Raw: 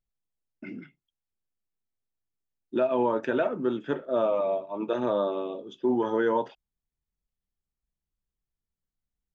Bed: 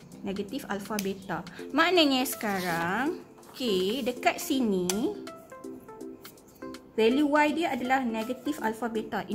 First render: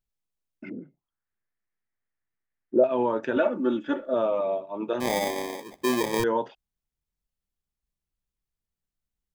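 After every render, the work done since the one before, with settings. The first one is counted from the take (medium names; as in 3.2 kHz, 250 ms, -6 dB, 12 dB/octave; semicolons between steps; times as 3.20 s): 0.69–2.84 s: touch-sensitive low-pass 520–1900 Hz down, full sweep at -41 dBFS; 3.36–4.14 s: comb 3.5 ms, depth 94%; 5.00–6.24 s: sample-rate reducer 1.4 kHz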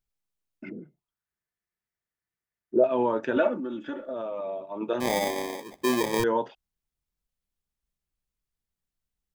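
0.69–2.86 s: comb of notches 270 Hz; 3.55–4.81 s: compression, threshold -30 dBFS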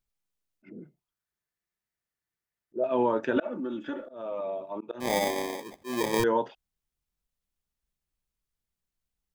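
slow attack 223 ms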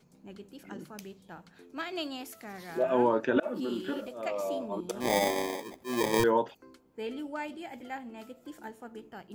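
add bed -14 dB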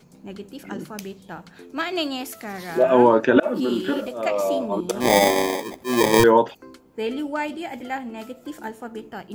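trim +10.5 dB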